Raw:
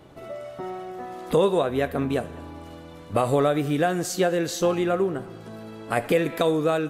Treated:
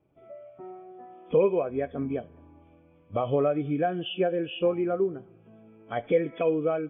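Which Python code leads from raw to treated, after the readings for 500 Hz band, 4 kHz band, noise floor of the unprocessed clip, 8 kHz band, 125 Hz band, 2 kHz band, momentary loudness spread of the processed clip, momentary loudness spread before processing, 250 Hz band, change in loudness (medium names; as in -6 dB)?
-3.0 dB, -5.0 dB, -43 dBFS, under -40 dB, -6.5 dB, -9.0 dB, 20 LU, 18 LU, -4.5 dB, -3.5 dB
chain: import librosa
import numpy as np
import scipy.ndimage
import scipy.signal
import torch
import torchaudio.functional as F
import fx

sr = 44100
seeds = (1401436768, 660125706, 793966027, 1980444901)

y = fx.freq_compress(x, sr, knee_hz=2200.0, ratio=4.0)
y = fx.spectral_expand(y, sr, expansion=1.5)
y = y * 10.0 ** (-2.5 / 20.0)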